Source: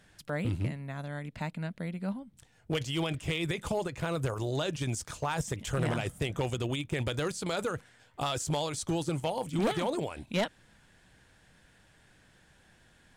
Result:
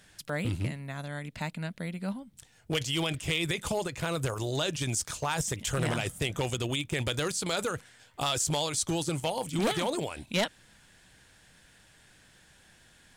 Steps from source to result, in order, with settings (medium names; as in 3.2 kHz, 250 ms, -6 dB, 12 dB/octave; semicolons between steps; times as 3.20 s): treble shelf 2.4 kHz +8.5 dB